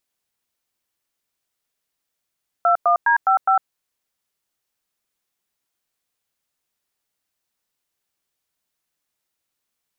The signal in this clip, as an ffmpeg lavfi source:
-f lavfi -i "aevalsrc='0.168*clip(min(mod(t,0.206),0.104-mod(t,0.206))/0.002,0,1)*(eq(floor(t/0.206),0)*(sin(2*PI*697*mod(t,0.206))+sin(2*PI*1336*mod(t,0.206)))+eq(floor(t/0.206),1)*(sin(2*PI*697*mod(t,0.206))+sin(2*PI*1209*mod(t,0.206)))+eq(floor(t/0.206),2)*(sin(2*PI*941*mod(t,0.206))+sin(2*PI*1633*mod(t,0.206)))+eq(floor(t/0.206),3)*(sin(2*PI*770*mod(t,0.206))+sin(2*PI*1336*mod(t,0.206)))+eq(floor(t/0.206),4)*(sin(2*PI*770*mod(t,0.206))+sin(2*PI*1336*mod(t,0.206))))':d=1.03:s=44100"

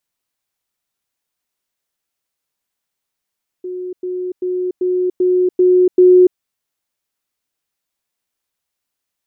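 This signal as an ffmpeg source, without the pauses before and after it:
-f lavfi -i "aevalsrc='pow(10,(-22.5+3*floor(t/0.39))/20)*sin(2*PI*364*t)*clip(min(mod(t,0.39),0.29-mod(t,0.39))/0.005,0,1)':d=2.73:s=44100"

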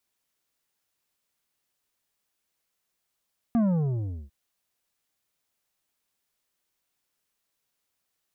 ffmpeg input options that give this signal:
-f lavfi -i "aevalsrc='0.1*clip((0.75-t)/0.75,0,1)*tanh(2.66*sin(2*PI*240*0.75/log(65/240)*(exp(log(65/240)*t/0.75)-1)))/tanh(2.66)':d=0.75:s=44100"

